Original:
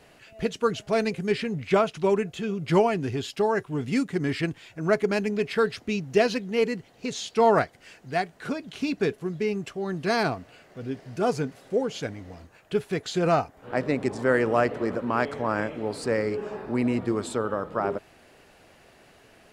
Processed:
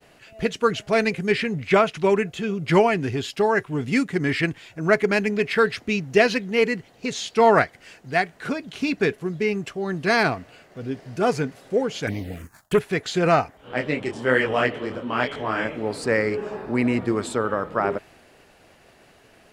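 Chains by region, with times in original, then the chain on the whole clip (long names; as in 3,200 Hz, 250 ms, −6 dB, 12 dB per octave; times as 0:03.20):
0:12.07–0:12.79: high-shelf EQ 6,000 Hz +12 dB + leveller curve on the samples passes 2 + phaser swept by the level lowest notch 330 Hz, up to 4,900 Hz, full sweep at −22 dBFS
0:13.57–0:15.65: parametric band 3,100 Hz +13.5 dB 0.34 octaves + micro pitch shift up and down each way 37 cents
whole clip: downward expander −52 dBFS; dynamic equaliser 2,000 Hz, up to +7 dB, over −43 dBFS, Q 1.4; level +3 dB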